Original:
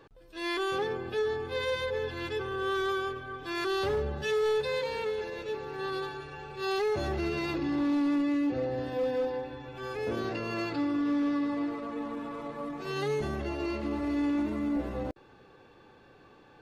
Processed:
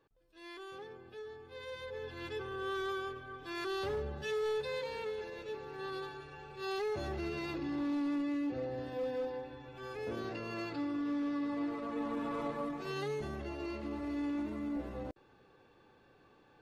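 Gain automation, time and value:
1.45 s -17 dB
2.28 s -7 dB
11.3 s -7 dB
12.43 s +2 dB
13.13 s -7.5 dB

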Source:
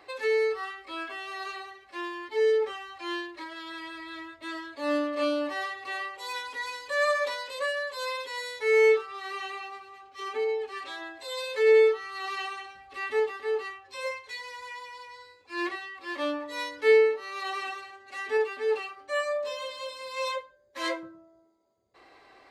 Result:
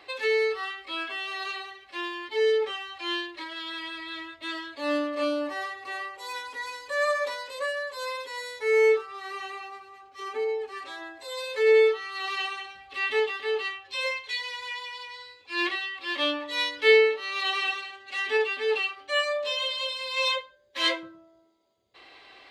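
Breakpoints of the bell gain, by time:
bell 3200 Hz 1.1 oct
4.62 s +9 dB
5.39 s -2 dB
11.3 s -2 dB
11.95 s +7.5 dB
12.69 s +7.5 dB
13.17 s +14 dB

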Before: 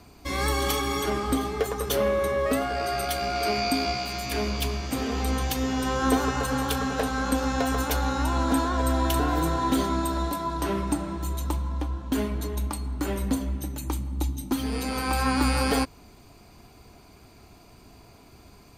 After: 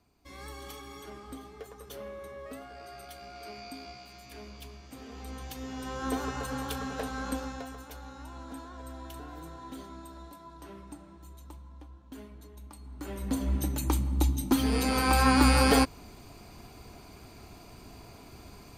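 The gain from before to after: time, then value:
4.9 s -18.5 dB
6.25 s -8.5 dB
7.34 s -8.5 dB
7.8 s -19.5 dB
12.61 s -19.5 dB
13.2 s -8.5 dB
13.55 s +2 dB

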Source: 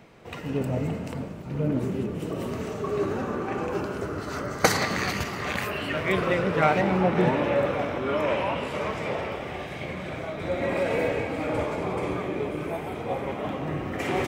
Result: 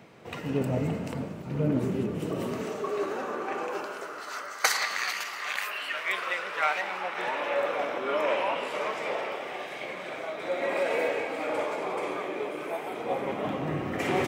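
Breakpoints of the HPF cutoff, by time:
2.35 s 100 Hz
2.96 s 430 Hz
3.53 s 430 Hz
4.54 s 1100 Hz
7.14 s 1100 Hz
7.89 s 430 Hz
12.8 s 430 Hz
13.55 s 110 Hz

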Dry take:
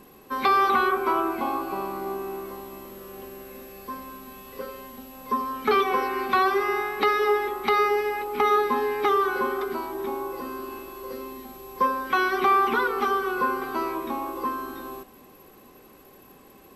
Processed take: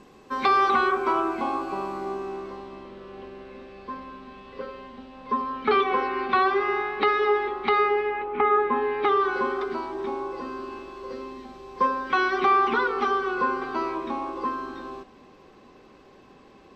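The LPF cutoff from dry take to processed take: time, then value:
LPF 24 dB/oct
1.95 s 7200 Hz
2.91 s 4200 Hz
7.64 s 4200 Hz
8.56 s 2300 Hz
9.37 s 5600 Hz

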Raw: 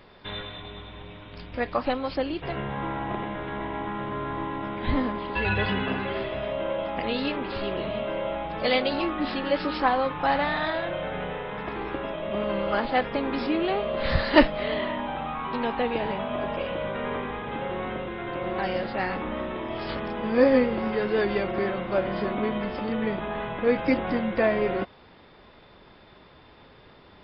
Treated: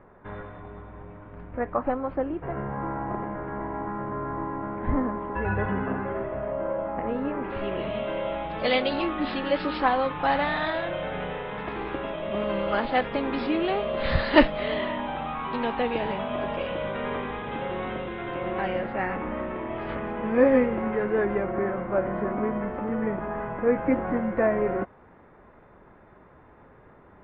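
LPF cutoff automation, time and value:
LPF 24 dB/oct
7.29 s 1600 Hz
7.56 s 2400 Hz
8.14 s 4200 Hz
18.1 s 4200 Hz
18.91 s 2400 Hz
20.62 s 2400 Hz
21.41 s 1800 Hz

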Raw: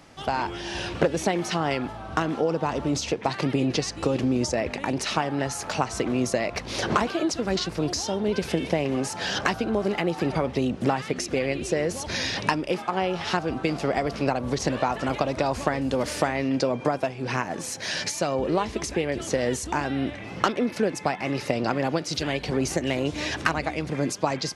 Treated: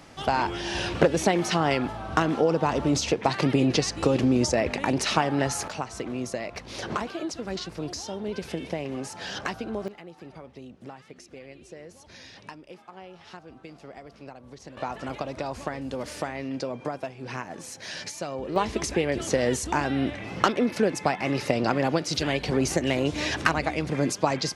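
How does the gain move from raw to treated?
+2 dB
from 5.68 s -7 dB
from 9.88 s -19 dB
from 14.77 s -7.5 dB
from 18.56 s +1 dB

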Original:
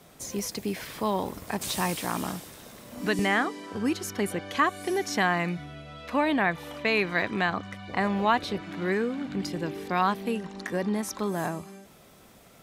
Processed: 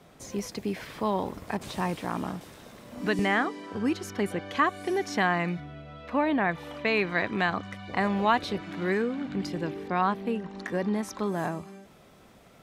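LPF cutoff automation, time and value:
LPF 6 dB/oct
3100 Hz
from 1.57 s 1500 Hz
from 2.41 s 3600 Hz
from 5.6 s 1700 Hz
from 6.49 s 3700 Hz
from 7.39 s 9800 Hz
from 9.02 s 4400 Hz
from 9.74 s 1900 Hz
from 10.53 s 3700 Hz

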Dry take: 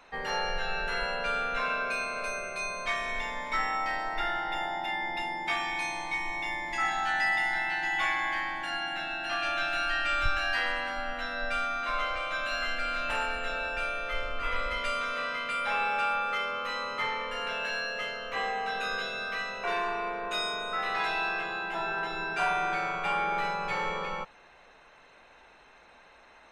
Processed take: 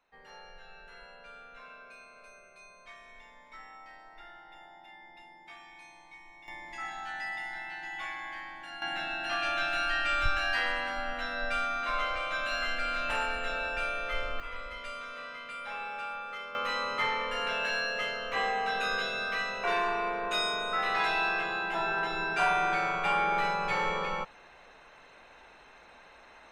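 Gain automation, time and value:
-19.5 dB
from 6.48 s -10 dB
from 8.82 s -0.5 dB
from 14.4 s -9.5 dB
from 16.55 s +1.5 dB

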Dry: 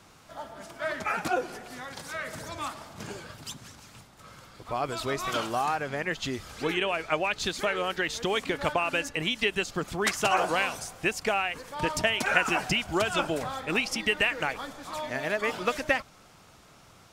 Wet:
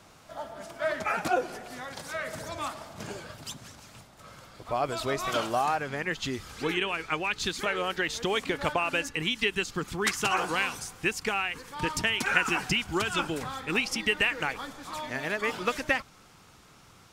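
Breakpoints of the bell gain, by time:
bell 630 Hz 0.42 oct
+4 dB
from 5.79 s -6 dB
from 6.78 s -13 dB
from 7.66 s -2.5 dB
from 9.06 s -13.5 dB
from 13.74 s -6 dB

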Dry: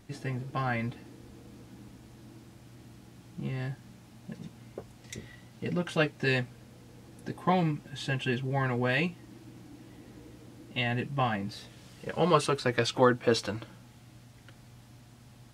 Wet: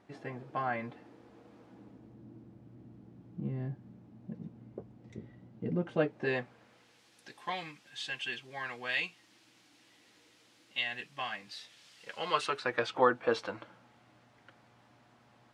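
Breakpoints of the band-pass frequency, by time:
band-pass, Q 0.69
1.62 s 790 Hz
2.19 s 240 Hz
5.66 s 240 Hz
6.58 s 1100 Hz
7.02 s 3600 Hz
12.16 s 3600 Hz
12.81 s 1000 Hz

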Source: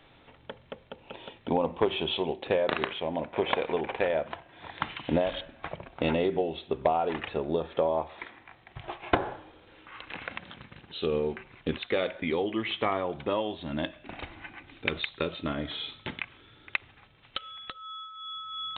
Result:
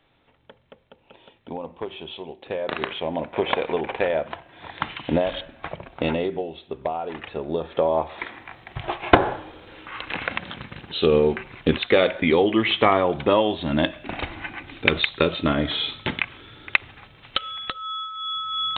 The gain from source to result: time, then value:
2.36 s -6.5 dB
2.93 s +4.5 dB
5.98 s +4.5 dB
6.52 s -2 dB
7.1 s -2 dB
8.36 s +10.5 dB

